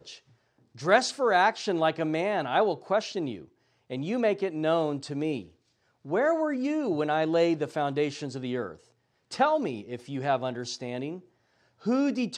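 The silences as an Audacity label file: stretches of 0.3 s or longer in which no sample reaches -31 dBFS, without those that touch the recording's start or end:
3.340000	3.910000	silence
5.410000	6.100000	silence
8.710000	9.320000	silence
11.140000	11.860000	silence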